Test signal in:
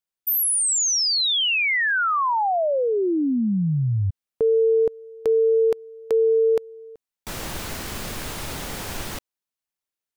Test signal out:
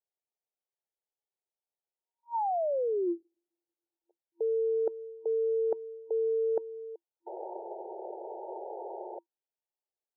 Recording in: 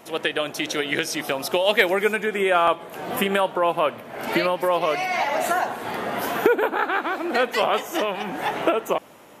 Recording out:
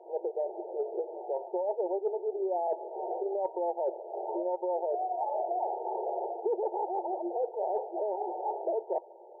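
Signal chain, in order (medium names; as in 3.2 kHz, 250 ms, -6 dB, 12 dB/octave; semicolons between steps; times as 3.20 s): FFT band-pass 340–940 Hz; reverse; compression 4:1, threshold -29 dBFS; reverse; distance through air 170 m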